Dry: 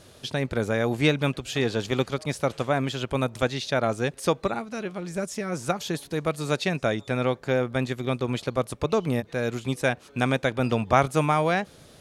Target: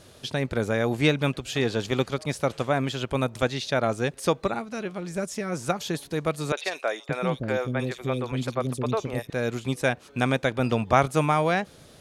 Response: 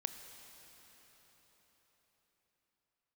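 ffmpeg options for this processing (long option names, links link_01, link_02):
-filter_complex "[0:a]asettb=1/sr,asplit=3[link_01][link_02][link_03];[link_01]atrim=end=6.524[link_04];[link_02]atrim=start=6.52:end=9.3,asetpts=PTS-STARTPTS,afade=type=in:duration=0.004:curve=qsin,afade=type=out:start_time=2.776:duration=0.004:curve=qsin,acrossover=split=400|3200[link_05][link_06][link_07];[link_07]adelay=50[link_08];[link_05]adelay=570[link_09];[link_09][link_06][link_08]amix=inputs=3:normalize=0,atrim=end_sample=122598[link_10];[link_03]atrim=start=9.296[link_11];[link_04][link_10]acrossfade=duration=0.004:curve1=hsin:curve2=qsin[link_12];[link_12][link_11]acrossfade=duration=0.004:curve1=qsin:curve2=hsin"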